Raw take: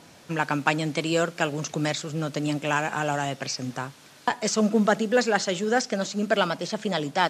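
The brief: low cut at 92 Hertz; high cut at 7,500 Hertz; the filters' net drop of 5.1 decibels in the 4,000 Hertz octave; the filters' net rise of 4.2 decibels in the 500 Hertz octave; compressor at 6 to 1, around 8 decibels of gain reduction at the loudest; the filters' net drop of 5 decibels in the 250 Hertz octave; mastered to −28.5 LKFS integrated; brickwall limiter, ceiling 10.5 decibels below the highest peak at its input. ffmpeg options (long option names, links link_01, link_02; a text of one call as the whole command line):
ffmpeg -i in.wav -af "highpass=92,lowpass=7500,equalizer=frequency=250:width_type=o:gain=-8.5,equalizer=frequency=500:width_type=o:gain=7,equalizer=frequency=4000:width_type=o:gain=-7,acompressor=threshold=-22dB:ratio=6,volume=3dB,alimiter=limit=-17.5dB:level=0:latency=1" out.wav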